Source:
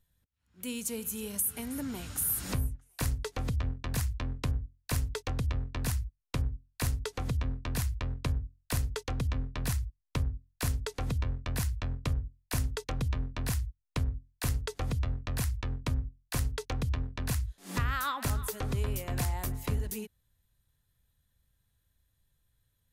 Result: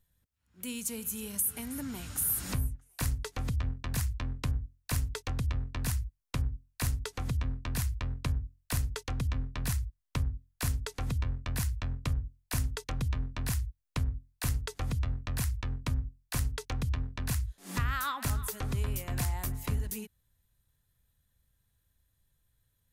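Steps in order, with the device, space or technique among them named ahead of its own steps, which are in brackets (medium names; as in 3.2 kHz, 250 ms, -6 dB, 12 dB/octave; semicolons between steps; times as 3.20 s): dynamic bell 480 Hz, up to -5 dB, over -49 dBFS, Q 1; exciter from parts (in parallel at -12.5 dB: high-pass 2.5 kHz + saturation -38 dBFS, distortion -5 dB + high-pass 3.8 kHz)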